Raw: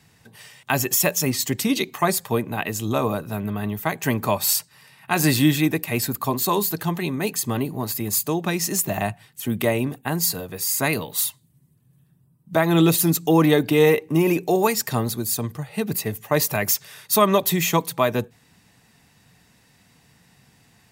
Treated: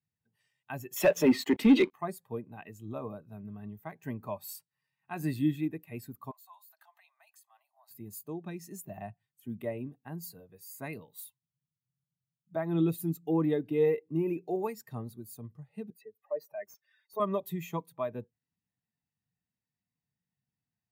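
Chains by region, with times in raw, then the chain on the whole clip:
0.96–1.93 s: three-band isolator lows -22 dB, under 210 Hz, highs -14 dB, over 3.9 kHz + waveshaping leveller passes 5
6.31–7.91 s: band-stop 6.7 kHz, Q 29 + compression 16:1, threshold -25 dBFS + steep high-pass 620 Hz 96 dB/octave
15.90–17.20 s: spectral contrast enhancement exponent 1.9 + high-pass 340 Hz + overdrive pedal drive 8 dB, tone 2.3 kHz, clips at -7.5 dBFS
whole clip: dynamic bell 5.7 kHz, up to -4 dB, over -40 dBFS, Q 1; spectral contrast expander 1.5:1; trim -8 dB

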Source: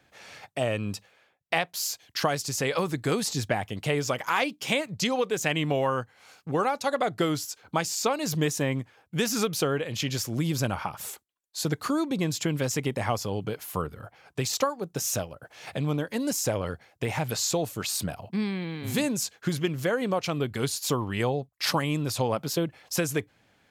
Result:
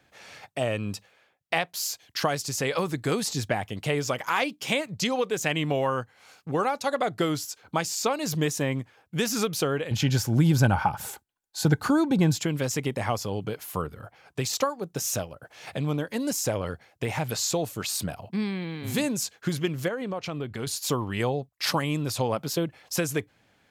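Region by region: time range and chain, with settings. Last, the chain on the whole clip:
9.91–12.39 s: bass shelf 240 Hz +11.5 dB + small resonant body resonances 840/1500 Hz, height 11 dB, ringing for 25 ms
19.88–20.67 s: treble shelf 5.9 kHz -10 dB + compression 2:1, threshold -31 dBFS
whole clip: none

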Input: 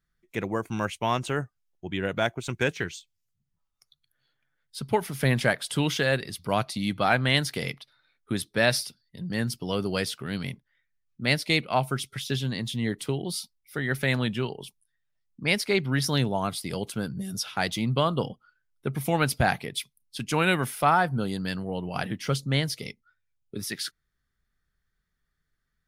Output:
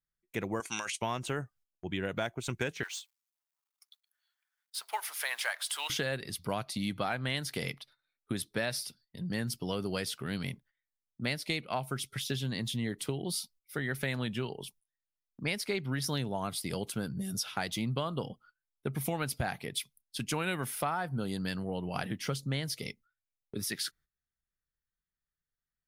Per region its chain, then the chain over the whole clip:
0.60–1.02 s: frequency weighting ITU-R 468 + compressor with a negative ratio -33 dBFS
2.83–5.90 s: companding laws mixed up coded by mu + high-pass 810 Hz 24 dB/octave
whole clip: gate -55 dBFS, range -14 dB; treble shelf 9.5 kHz +5 dB; compression, threshold -27 dBFS; trim -2.5 dB

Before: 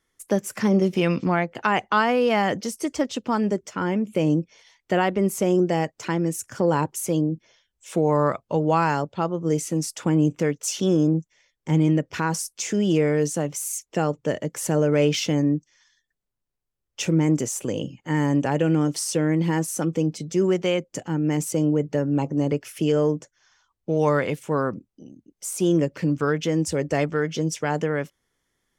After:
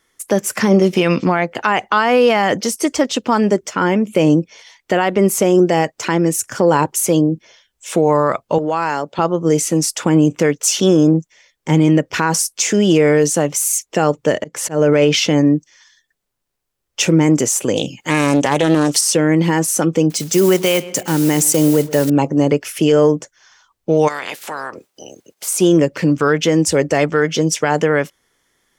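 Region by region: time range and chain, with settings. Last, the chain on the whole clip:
8.58–9.19 s: high-pass 180 Hz + compression 3:1, threshold -27 dBFS
14.38–15.46 s: treble shelf 8.1 kHz -9.5 dB + slow attack 165 ms
17.76–19.01 s: treble shelf 2.8 kHz +10.5 dB + loudspeaker Doppler distortion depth 0.32 ms
20.10–22.10 s: block-companded coder 5-bit + treble shelf 5.1 kHz +9.5 dB + filtered feedback delay 128 ms, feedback 53%, low-pass 3.5 kHz, level -20 dB
24.07–25.47 s: spectral peaks clipped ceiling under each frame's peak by 24 dB + high-pass 280 Hz 6 dB/octave + compression 2.5:1, threshold -39 dBFS
whole clip: bass shelf 230 Hz -8.5 dB; loudness maximiser +15 dB; trim -3 dB

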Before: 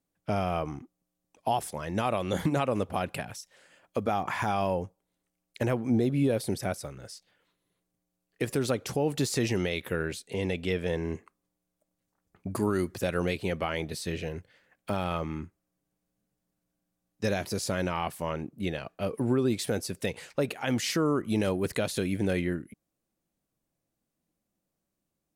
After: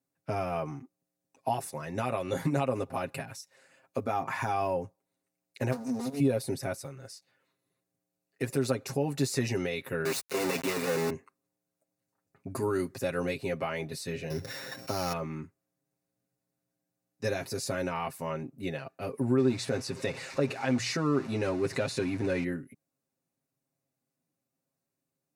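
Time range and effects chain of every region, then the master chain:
5.72–6.20 s: comb filter that takes the minimum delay 4.2 ms + resonant high shelf 3.7 kHz +11 dB, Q 1.5 + compression 2:1, threshold -29 dBFS
10.05–11.10 s: high-pass 180 Hz 24 dB/octave + companded quantiser 2-bit
14.30–15.13 s: sorted samples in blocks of 8 samples + level flattener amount 70%
19.38–22.44 s: jump at every zero crossing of -35.5 dBFS + low-pass 6.5 kHz + hum notches 60/120 Hz
whole clip: high-pass 86 Hz; band-stop 3.2 kHz, Q 5.4; comb 7.5 ms, depth 77%; trim -4 dB

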